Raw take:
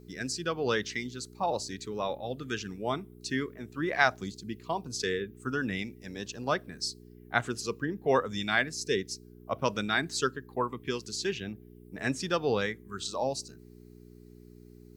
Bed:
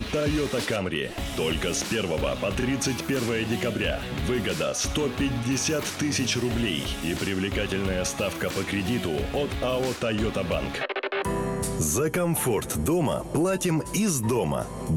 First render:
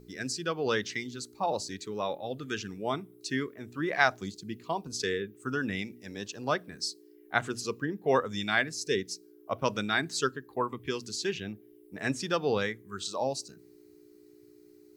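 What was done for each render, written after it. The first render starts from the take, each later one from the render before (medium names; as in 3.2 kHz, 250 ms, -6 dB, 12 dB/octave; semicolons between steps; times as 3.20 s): de-hum 60 Hz, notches 4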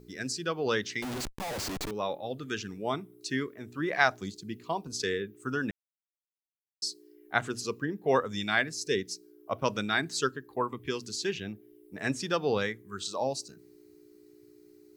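1.02–1.91 s: Schmitt trigger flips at -45.5 dBFS; 5.71–6.82 s: mute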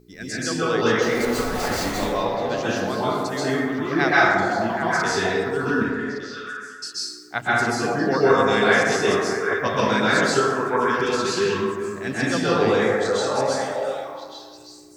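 on a send: repeats whose band climbs or falls 388 ms, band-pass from 550 Hz, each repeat 1.4 oct, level -3 dB; on the sum: plate-style reverb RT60 1.6 s, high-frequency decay 0.4×, pre-delay 115 ms, DRR -9.5 dB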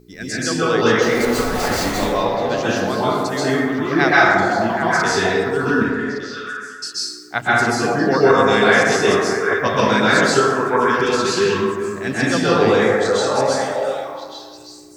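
trim +4.5 dB; peak limiter -2 dBFS, peak gain reduction 3 dB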